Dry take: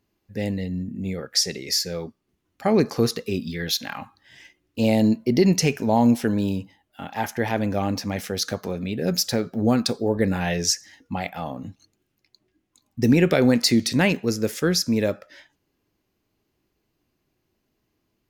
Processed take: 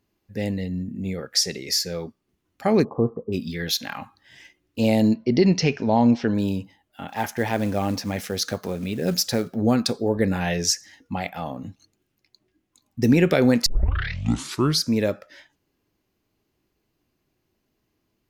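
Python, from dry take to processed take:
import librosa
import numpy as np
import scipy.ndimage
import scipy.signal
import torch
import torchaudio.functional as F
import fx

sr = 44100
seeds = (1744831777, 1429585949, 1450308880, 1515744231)

y = fx.cheby1_lowpass(x, sr, hz=1100.0, order=5, at=(2.83, 3.32), fade=0.02)
y = fx.steep_lowpass(y, sr, hz=5600.0, slope=36, at=(5.14, 6.35))
y = fx.quant_companded(y, sr, bits=6, at=(7.08, 9.53))
y = fx.edit(y, sr, fx.tape_start(start_s=13.66, length_s=1.23), tone=tone)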